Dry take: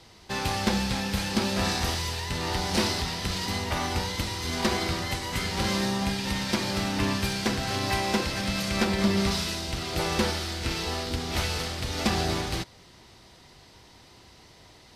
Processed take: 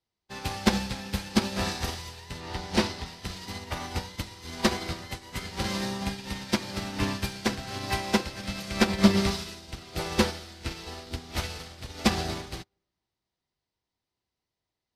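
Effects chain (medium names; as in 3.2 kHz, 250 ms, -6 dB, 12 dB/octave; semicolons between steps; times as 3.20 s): 2.40–3.06 s: treble shelf 7.5 kHz -9.5 dB; reverberation RT60 1.7 s, pre-delay 98 ms, DRR 18.5 dB; upward expansion 2.5:1, over -47 dBFS; trim +7 dB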